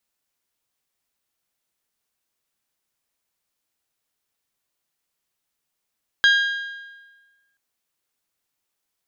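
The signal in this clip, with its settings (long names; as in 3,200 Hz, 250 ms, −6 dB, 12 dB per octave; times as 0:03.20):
struck metal bell, length 1.33 s, lowest mode 1,620 Hz, decay 1.35 s, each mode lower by 6 dB, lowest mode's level −11.5 dB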